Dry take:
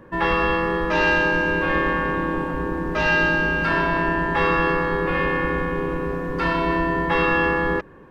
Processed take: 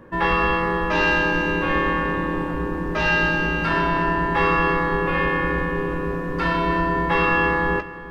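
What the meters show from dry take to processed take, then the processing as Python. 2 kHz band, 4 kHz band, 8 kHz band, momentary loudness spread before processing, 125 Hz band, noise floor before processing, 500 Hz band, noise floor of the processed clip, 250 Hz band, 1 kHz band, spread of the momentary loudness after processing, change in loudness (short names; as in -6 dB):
-0.5 dB, +1.5 dB, n/a, 7 LU, +1.5 dB, -41 dBFS, -1.0 dB, -33 dBFS, 0.0 dB, +1.0 dB, 7 LU, 0.0 dB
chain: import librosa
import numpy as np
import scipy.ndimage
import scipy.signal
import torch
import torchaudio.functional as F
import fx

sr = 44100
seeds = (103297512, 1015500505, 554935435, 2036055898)

p1 = fx.doubler(x, sr, ms=17.0, db=-11)
y = p1 + fx.echo_single(p1, sr, ms=365, db=-15.5, dry=0)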